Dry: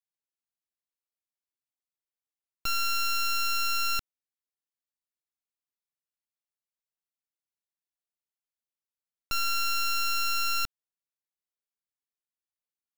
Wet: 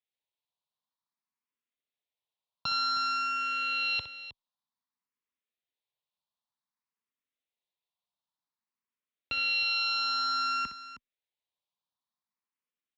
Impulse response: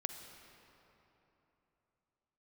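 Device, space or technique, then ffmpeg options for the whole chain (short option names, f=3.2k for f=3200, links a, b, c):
barber-pole phaser into a guitar amplifier: -filter_complex "[0:a]equalizer=f=1.5k:w=3.5:g=-5,asplit=2[a][b];[b]afreqshift=0.54[c];[a][c]amix=inputs=2:normalize=1,asoftclip=type=tanh:threshold=-25.5dB,highpass=99,equalizer=f=240:t=q:w=4:g=4,equalizer=f=340:t=q:w=4:g=-7,equalizer=f=1k:t=q:w=4:g=8,equalizer=f=3.7k:t=q:w=4:g=5,lowpass=f=4.4k:w=0.5412,lowpass=f=4.4k:w=1.3066,aecho=1:1:62|314:0.316|0.224,volume=4.5dB"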